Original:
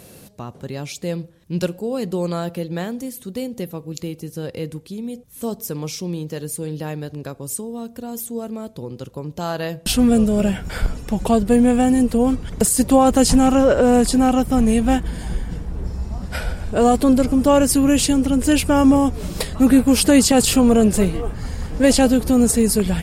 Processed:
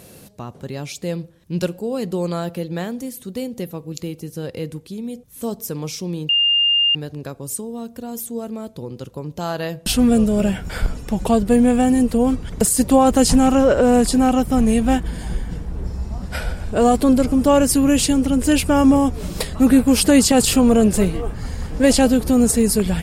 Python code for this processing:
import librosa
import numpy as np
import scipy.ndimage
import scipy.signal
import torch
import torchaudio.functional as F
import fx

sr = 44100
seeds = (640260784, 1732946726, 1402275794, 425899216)

y = fx.edit(x, sr, fx.bleep(start_s=6.29, length_s=0.66, hz=2810.0, db=-13.0), tone=tone)